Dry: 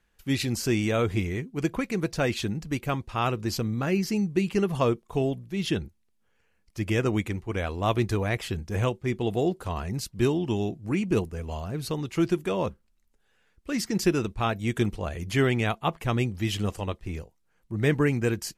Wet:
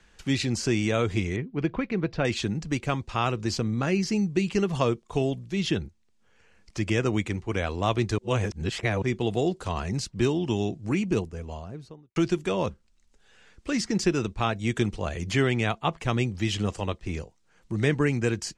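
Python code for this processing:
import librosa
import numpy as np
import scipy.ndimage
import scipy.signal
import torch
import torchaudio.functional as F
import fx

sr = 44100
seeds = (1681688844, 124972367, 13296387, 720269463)

y = fx.air_absorb(x, sr, metres=350.0, at=(1.36, 2.25))
y = fx.studio_fade_out(y, sr, start_s=10.85, length_s=1.31)
y = fx.edit(y, sr, fx.reverse_span(start_s=8.18, length_s=0.84), tone=tone)
y = scipy.signal.sosfilt(scipy.signal.butter(4, 7800.0, 'lowpass', fs=sr, output='sos'), y)
y = fx.high_shelf(y, sr, hz=4600.0, db=5.5)
y = fx.band_squash(y, sr, depth_pct=40)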